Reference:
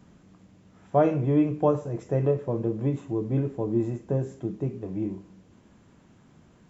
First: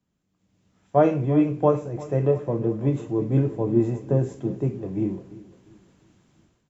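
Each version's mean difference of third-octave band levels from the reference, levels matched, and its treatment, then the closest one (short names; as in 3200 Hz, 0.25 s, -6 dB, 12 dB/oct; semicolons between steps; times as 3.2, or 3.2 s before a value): 3.0 dB: AGC gain up to 13 dB; feedback echo 0.347 s, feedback 50%, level -14.5 dB; three-band expander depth 40%; gain -7.5 dB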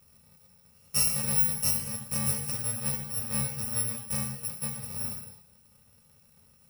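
15.5 dB: FFT order left unsorted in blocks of 128 samples; notches 60/120 Hz; non-linear reverb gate 0.3 s falling, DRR 2 dB; gain -6.5 dB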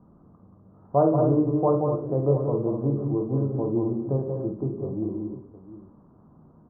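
5.0 dB: elliptic low-pass 1200 Hz, stop band 60 dB; de-hum 59.83 Hz, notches 11; on a send: tapped delay 50/178/191/247/709 ms -7.5/-7.5/-8/-9/-15 dB; on the sum: gain +1 dB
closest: first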